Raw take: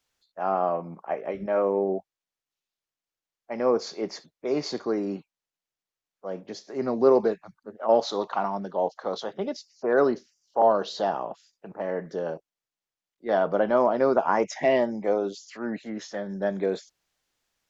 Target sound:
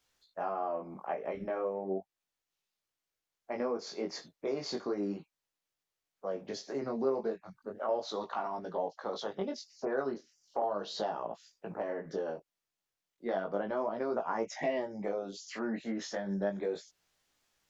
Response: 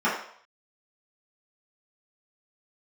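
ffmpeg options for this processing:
-af "acompressor=threshold=0.0158:ratio=3,flanger=delay=17.5:depth=4.8:speed=0.35,volume=1.68"

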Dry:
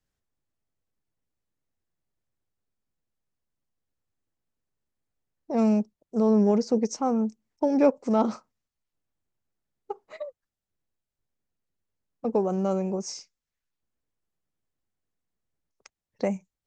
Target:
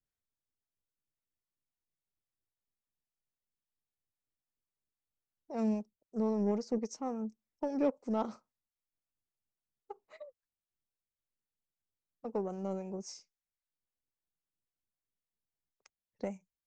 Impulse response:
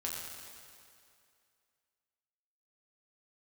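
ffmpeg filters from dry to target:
-filter_complex "[0:a]acrossover=split=510[s0][s1];[s0]aeval=exprs='val(0)*(1-0.5/2+0.5/2*cos(2*PI*3.7*n/s))':c=same[s2];[s1]aeval=exprs='val(0)*(1-0.5/2-0.5/2*cos(2*PI*3.7*n/s))':c=same[s3];[s2][s3]amix=inputs=2:normalize=0,aeval=exprs='0.282*(cos(1*acos(clip(val(0)/0.282,-1,1)))-cos(1*PI/2))+0.00891*(cos(7*acos(clip(val(0)/0.282,-1,1)))-cos(7*PI/2))':c=same,volume=0.398"

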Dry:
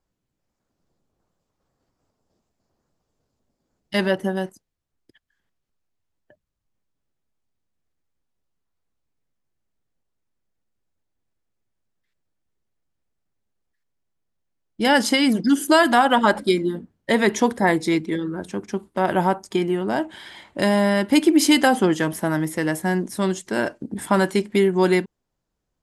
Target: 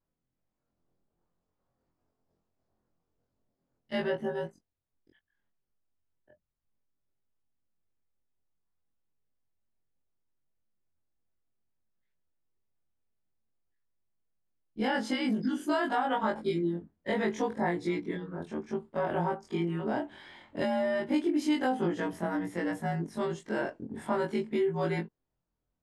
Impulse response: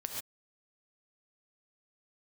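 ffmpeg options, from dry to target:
-af "afftfilt=real='re':imag='-im':win_size=2048:overlap=0.75,acompressor=threshold=0.0631:ratio=3,aemphasis=mode=reproduction:type=75fm,volume=0.708"

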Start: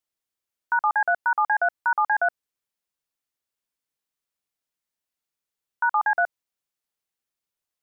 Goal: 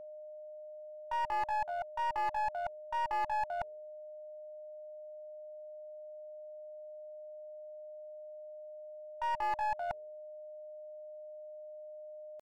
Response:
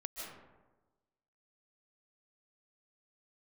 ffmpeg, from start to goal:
-af "bandreject=f=77.45:t=h:w=4,bandreject=f=154.9:t=h:w=4,bandreject=f=232.35:t=h:w=4,bandreject=f=309.8:t=h:w=4,bandreject=f=387.25:t=h:w=4,bandreject=f=464.7:t=h:w=4,areverse,acompressor=threshold=0.0251:ratio=12,areverse,lowpass=f=900:t=q:w=5.5,aeval=exprs='clip(val(0),-1,0.0447)':c=same,atempo=0.63,aeval=exprs='val(0)+0.0126*sin(2*PI*610*n/s)':c=same,volume=0.447"

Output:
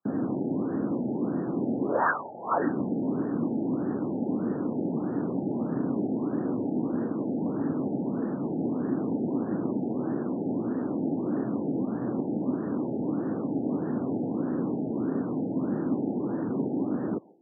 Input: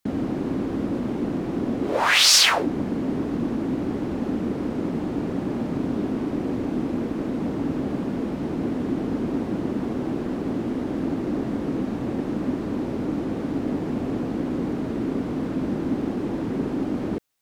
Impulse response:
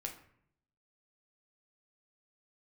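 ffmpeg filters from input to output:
-filter_complex "[0:a]highpass=f=120:w=0.5412,highpass=f=120:w=1.3066,asplit=2[s0][s1];[s1]aderivative[s2];[1:a]atrim=start_sample=2205,lowpass=3800,adelay=139[s3];[s2][s3]afir=irnorm=-1:irlink=0,volume=1.33[s4];[s0][s4]amix=inputs=2:normalize=0,afftfilt=real='re*lt(b*sr/1024,870*pow(1900/870,0.5+0.5*sin(2*PI*1.6*pts/sr)))':imag='im*lt(b*sr/1024,870*pow(1900/870,0.5+0.5*sin(2*PI*1.6*pts/sr)))':win_size=1024:overlap=0.75,volume=0.75"

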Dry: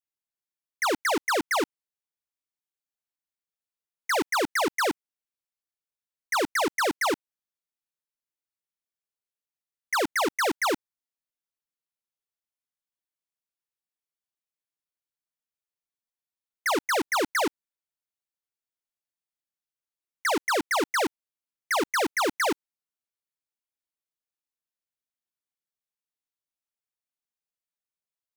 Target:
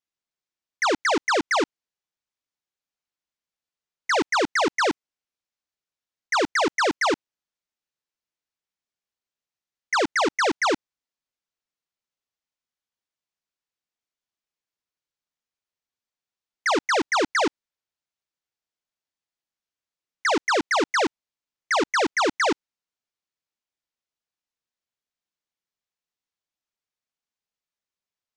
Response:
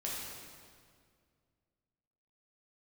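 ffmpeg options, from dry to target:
-af "lowpass=f=7100:w=0.5412,lowpass=f=7100:w=1.3066,volume=1.5"

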